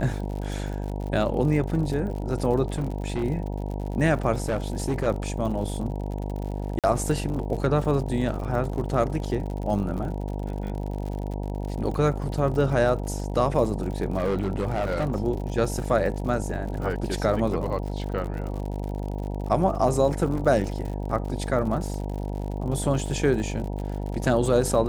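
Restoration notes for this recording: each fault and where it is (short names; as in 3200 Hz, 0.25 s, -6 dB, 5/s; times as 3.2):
buzz 50 Hz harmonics 19 -30 dBFS
crackle 76/s -33 dBFS
2.64–3.24 clipped -22.5 dBFS
4.42–5.08 clipped -20.5 dBFS
6.79–6.84 gap 47 ms
14.18–15.16 clipped -20.5 dBFS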